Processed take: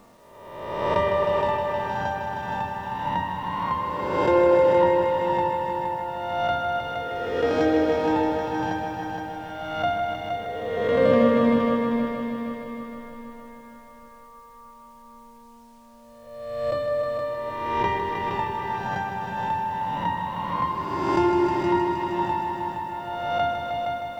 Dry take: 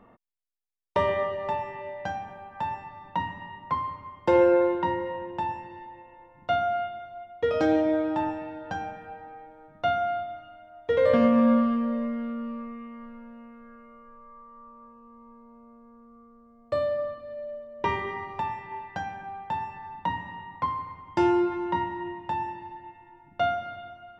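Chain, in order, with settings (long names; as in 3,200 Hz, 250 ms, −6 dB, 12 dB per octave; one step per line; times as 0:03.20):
peak hold with a rise ahead of every peak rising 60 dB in 1.35 s
echo machine with several playback heads 156 ms, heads all three, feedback 61%, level −8.5 dB
bit-depth reduction 10 bits, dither none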